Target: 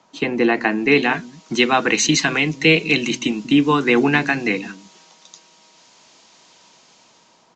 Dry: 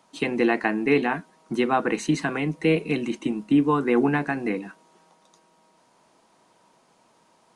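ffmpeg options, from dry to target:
ffmpeg -i in.wav -filter_complex "[0:a]acrossover=split=280|2400[link_01][link_02][link_03];[link_01]aecho=1:1:190:0.376[link_04];[link_03]dynaudnorm=framelen=390:gausssize=5:maxgain=15dB[link_05];[link_04][link_02][link_05]amix=inputs=3:normalize=0,aresample=16000,aresample=44100,volume=4dB" out.wav

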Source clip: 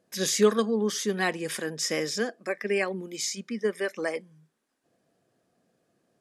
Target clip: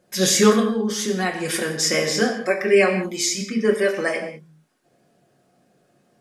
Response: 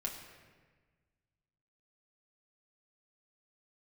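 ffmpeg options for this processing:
-filter_complex "[0:a]asplit=3[link_01][link_02][link_03];[link_01]afade=type=out:start_time=0.58:duration=0.02[link_04];[link_02]acompressor=threshold=-29dB:ratio=10,afade=type=in:start_time=0.58:duration=0.02,afade=type=out:start_time=1.41:duration=0.02[link_05];[link_03]afade=type=in:start_time=1.41:duration=0.02[link_06];[link_04][link_05][link_06]amix=inputs=3:normalize=0[link_07];[1:a]atrim=start_sample=2205,afade=type=out:start_time=0.26:duration=0.01,atrim=end_sample=11907[link_08];[link_07][link_08]afir=irnorm=-1:irlink=0,volume=9dB"

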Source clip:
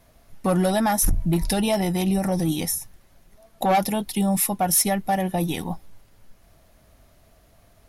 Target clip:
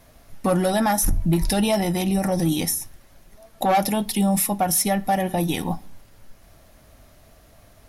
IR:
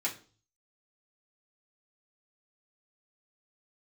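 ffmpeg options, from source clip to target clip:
-filter_complex "[0:a]alimiter=limit=-17.5dB:level=0:latency=1:release=119,asplit=2[link_01][link_02];[1:a]atrim=start_sample=2205,asetrate=32634,aresample=44100[link_03];[link_02][link_03]afir=irnorm=-1:irlink=0,volume=-18dB[link_04];[link_01][link_04]amix=inputs=2:normalize=0,volume=4dB"

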